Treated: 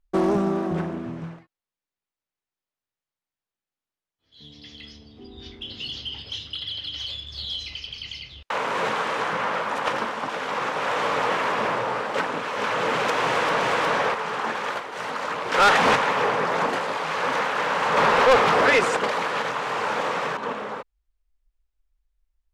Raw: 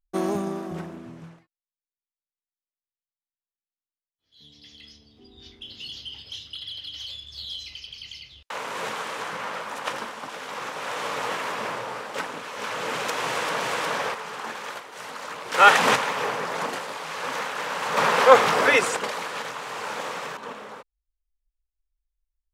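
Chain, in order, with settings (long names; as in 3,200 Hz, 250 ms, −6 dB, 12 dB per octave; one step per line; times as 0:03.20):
low-pass filter 2,500 Hz 6 dB per octave
in parallel at −2.5 dB: downward compressor, threshold −31 dBFS, peak gain reduction 21.5 dB
on the sum: soft clipping −16 dBFS, distortion −9 dB
highs frequency-modulated by the lows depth 0.17 ms
level +4 dB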